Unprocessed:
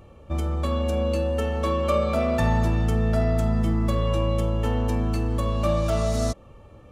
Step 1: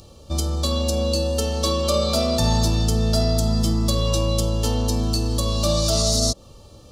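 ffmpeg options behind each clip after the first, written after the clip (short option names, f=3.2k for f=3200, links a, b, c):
-filter_complex "[0:a]highshelf=f=3.1k:t=q:w=3:g=14,acrossover=split=950[a][b];[b]alimiter=limit=-15.5dB:level=0:latency=1:release=121[c];[a][c]amix=inputs=2:normalize=0,volume=2dB"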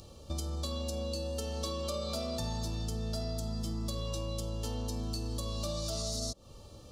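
-af "acompressor=threshold=-29dB:ratio=4,volume=-5.5dB"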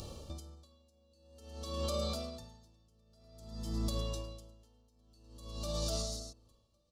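-af "aecho=1:1:1106:0.224,alimiter=level_in=7.5dB:limit=-24dB:level=0:latency=1:release=222,volume=-7.5dB,aeval=exprs='val(0)*pow(10,-35*(0.5-0.5*cos(2*PI*0.51*n/s))/20)':c=same,volume=6dB"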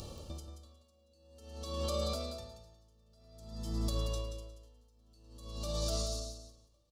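-af "aecho=1:1:180|360|540:0.355|0.071|0.0142"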